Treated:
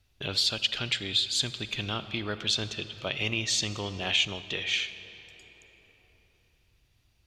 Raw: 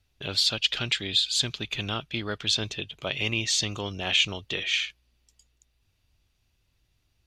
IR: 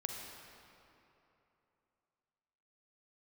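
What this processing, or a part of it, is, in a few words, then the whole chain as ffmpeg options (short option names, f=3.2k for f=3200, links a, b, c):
ducked reverb: -filter_complex "[0:a]asplit=3[a][b][c];[1:a]atrim=start_sample=2205[d];[b][d]afir=irnorm=-1:irlink=0[e];[c]apad=whole_len=320189[f];[e][f]sidechaincompress=threshold=-34dB:ratio=3:attack=16:release=1460,volume=3.5dB[g];[a][g]amix=inputs=2:normalize=0,volume=-5dB"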